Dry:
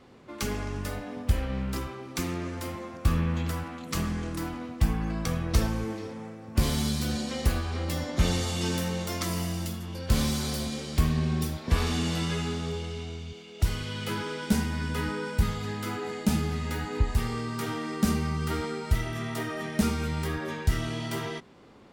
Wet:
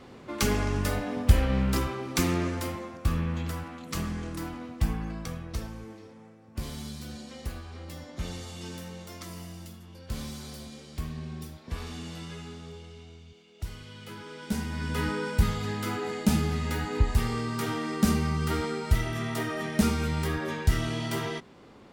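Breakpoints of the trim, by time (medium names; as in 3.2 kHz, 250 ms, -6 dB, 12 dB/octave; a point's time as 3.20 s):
2.41 s +5.5 dB
3.04 s -2.5 dB
4.92 s -2.5 dB
5.62 s -11 dB
14.16 s -11 dB
15.03 s +1.5 dB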